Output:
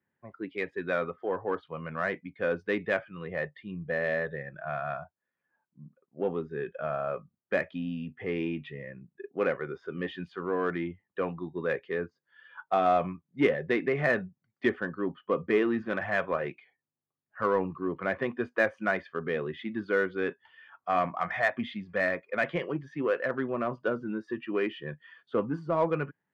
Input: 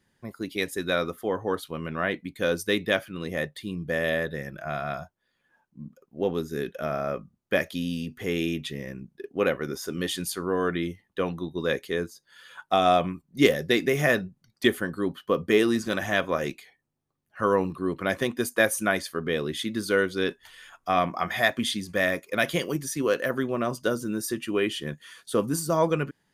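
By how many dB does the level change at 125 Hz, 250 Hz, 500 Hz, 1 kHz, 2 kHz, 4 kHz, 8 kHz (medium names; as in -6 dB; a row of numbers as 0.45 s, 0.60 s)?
-5.5 dB, -5.0 dB, -3.5 dB, -3.0 dB, -3.5 dB, -15.0 dB, under -25 dB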